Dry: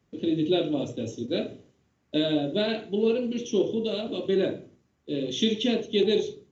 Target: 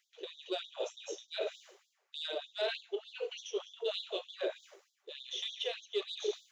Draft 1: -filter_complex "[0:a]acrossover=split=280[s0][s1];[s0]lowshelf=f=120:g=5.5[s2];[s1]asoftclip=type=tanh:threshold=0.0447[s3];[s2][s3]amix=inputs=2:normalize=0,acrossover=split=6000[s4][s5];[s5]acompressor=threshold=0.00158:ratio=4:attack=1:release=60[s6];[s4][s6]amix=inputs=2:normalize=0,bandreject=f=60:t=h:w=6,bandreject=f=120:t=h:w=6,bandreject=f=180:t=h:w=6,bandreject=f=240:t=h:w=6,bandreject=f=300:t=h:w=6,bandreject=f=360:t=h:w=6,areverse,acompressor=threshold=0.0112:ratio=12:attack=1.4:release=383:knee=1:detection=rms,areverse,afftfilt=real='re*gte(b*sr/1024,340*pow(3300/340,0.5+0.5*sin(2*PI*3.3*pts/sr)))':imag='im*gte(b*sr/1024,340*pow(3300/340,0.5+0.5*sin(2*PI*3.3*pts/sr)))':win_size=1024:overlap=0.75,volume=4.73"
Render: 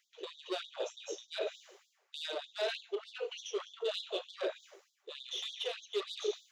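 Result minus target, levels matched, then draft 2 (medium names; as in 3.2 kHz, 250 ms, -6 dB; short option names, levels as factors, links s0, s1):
saturation: distortion +10 dB
-filter_complex "[0:a]acrossover=split=280[s0][s1];[s0]lowshelf=f=120:g=5.5[s2];[s1]asoftclip=type=tanh:threshold=0.119[s3];[s2][s3]amix=inputs=2:normalize=0,acrossover=split=6000[s4][s5];[s5]acompressor=threshold=0.00158:ratio=4:attack=1:release=60[s6];[s4][s6]amix=inputs=2:normalize=0,bandreject=f=60:t=h:w=6,bandreject=f=120:t=h:w=6,bandreject=f=180:t=h:w=6,bandreject=f=240:t=h:w=6,bandreject=f=300:t=h:w=6,bandreject=f=360:t=h:w=6,areverse,acompressor=threshold=0.0112:ratio=12:attack=1.4:release=383:knee=1:detection=rms,areverse,afftfilt=real='re*gte(b*sr/1024,340*pow(3300/340,0.5+0.5*sin(2*PI*3.3*pts/sr)))':imag='im*gte(b*sr/1024,340*pow(3300/340,0.5+0.5*sin(2*PI*3.3*pts/sr)))':win_size=1024:overlap=0.75,volume=4.73"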